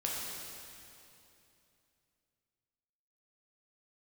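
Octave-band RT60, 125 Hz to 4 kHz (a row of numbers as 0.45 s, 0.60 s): 3.4 s, 3.2 s, 3.0 s, 2.7 s, 2.7 s, 2.6 s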